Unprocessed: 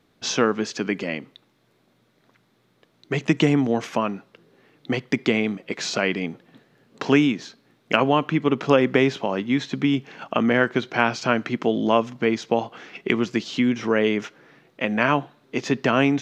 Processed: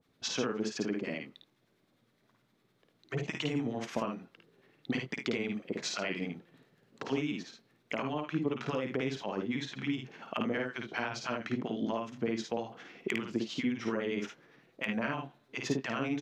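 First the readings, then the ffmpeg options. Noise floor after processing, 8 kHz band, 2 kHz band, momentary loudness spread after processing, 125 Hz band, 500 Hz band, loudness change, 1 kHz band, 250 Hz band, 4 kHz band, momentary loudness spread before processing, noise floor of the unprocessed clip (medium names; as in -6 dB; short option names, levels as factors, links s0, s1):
-73 dBFS, no reading, -12.5 dB, 7 LU, -12.0 dB, -13.5 dB, -13.0 dB, -14.5 dB, -12.5 dB, -10.5 dB, 10 LU, -64 dBFS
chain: -filter_complex "[0:a]acompressor=threshold=0.1:ratio=6,acrossover=split=860[s0][s1];[s0]aeval=exprs='val(0)*(1-1/2+1/2*cos(2*PI*9.8*n/s))':c=same[s2];[s1]aeval=exprs='val(0)*(1-1/2-1/2*cos(2*PI*9.8*n/s))':c=same[s3];[s2][s3]amix=inputs=2:normalize=0,aecho=1:1:53|76:0.668|0.251,volume=4.73,asoftclip=hard,volume=0.211,volume=0.531"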